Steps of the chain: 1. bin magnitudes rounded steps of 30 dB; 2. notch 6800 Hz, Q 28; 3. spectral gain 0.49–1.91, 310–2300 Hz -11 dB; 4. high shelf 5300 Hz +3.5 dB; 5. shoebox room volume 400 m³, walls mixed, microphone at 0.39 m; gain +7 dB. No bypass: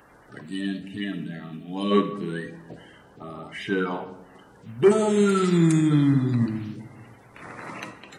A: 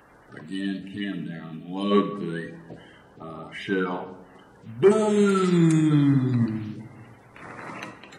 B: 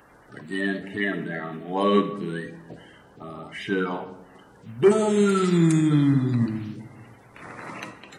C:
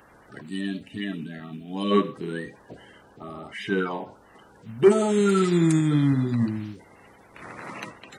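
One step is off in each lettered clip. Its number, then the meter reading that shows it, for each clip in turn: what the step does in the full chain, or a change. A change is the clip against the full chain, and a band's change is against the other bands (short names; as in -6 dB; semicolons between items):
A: 4, 8 kHz band -2.5 dB; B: 3, 2 kHz band +3.5 dB; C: 5, echo-to-direct -10.0 dB to none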